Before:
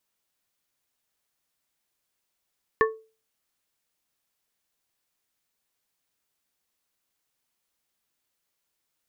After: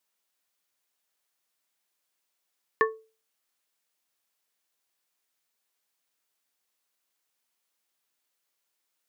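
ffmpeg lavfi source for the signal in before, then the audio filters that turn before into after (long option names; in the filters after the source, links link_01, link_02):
-f lavfi -i "aevalsrc='0.158*pow(10,-3*t/0.34)*sin(2*PI*442*t)+0.141*pow(10,-3*t/0.179)*sin(2*PI*1105*t)+0.126*pow(10,-3*t/0.129)*sin(2*PI*1768*t)':duration=0.89:sample_rate=44100"
-af "highpass=frequency=380:poles=1"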